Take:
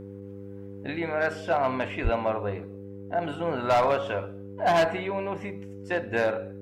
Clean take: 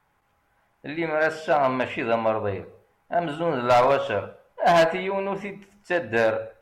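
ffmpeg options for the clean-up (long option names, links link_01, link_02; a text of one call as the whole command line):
ffmpeg -i in.wav -filter_complex "[0:a]bandreject=frequency=99.2:width_type=h:width=4,bandreject=frequency=198.4:width_type=h:width=4,bandreject=frequency=297.6:width_type=h:width=4,bandreject=frequency=396.8:width_type=h:width=4,bandreject=frequency=496:width_type=h:width=4,asplit=3[link_01][link_02][link_03];[link_01]afade=type=out:start_time=2.03:duration=0.02[link_04];[link_02]highpass=frequency=140:width=0.5412,highpass=frequency=140:width=1.3066,afade=type=in:start_time=2.03:duration=0.02,afade=type=out:start_time=2.15:duration=0.02[link_05];[link_03]afade=type=in:start_time=2.15:duration=0.02[link_06];[link_04][link_05][link_06]amix=inputs=3:normalize=0,asetnsamples=nb_out_samples=441:pad=0,asendcmd='0.98 volume volume 4dB',volume=0dB" out.wav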